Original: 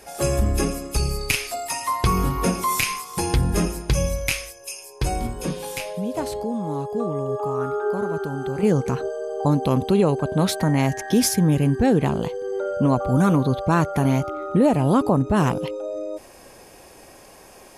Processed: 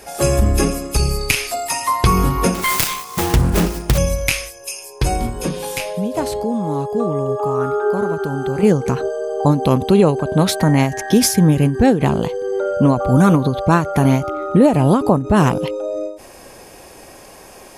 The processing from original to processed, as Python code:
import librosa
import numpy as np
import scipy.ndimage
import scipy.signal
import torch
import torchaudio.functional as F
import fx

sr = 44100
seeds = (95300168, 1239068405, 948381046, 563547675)

y = fx.self_delay(x, sr, depth_ms=0.48, at=(2.54, 3.98))
y = fx.end_taper(y, sr, db_per_s=120.0)
y = y * 10.0 ** (6.0 / 20.0)